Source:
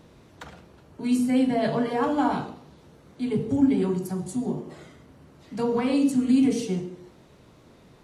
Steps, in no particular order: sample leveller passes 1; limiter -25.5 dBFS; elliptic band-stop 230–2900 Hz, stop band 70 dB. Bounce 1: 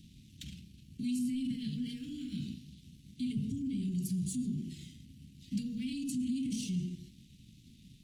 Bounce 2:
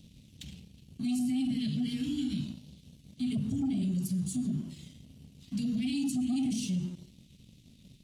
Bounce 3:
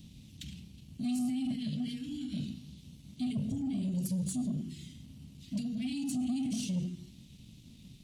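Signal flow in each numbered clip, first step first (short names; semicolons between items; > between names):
sample leveller > limiter > elliptic band-stop; elliptic band-stop > sample leveller > limiter; limiter > elliptic band-stop > sample leveller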